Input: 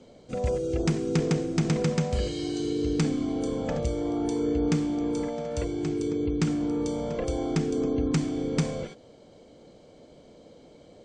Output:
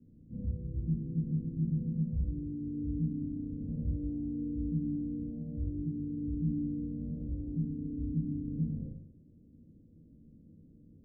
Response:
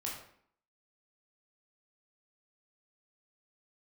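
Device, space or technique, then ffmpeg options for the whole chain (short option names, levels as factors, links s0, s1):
club heard from the street: -filter_complex "[0:a]alimiter=limit=0.0631:level=0:latency=1:release=81,lowpass=f=240:w=0.5412,lowpass=f=240:w=1.3066[s0];[1:a]atrim=start_sample=2205[s1];[s0][s1]afir=irnorm=-1:irlink=0"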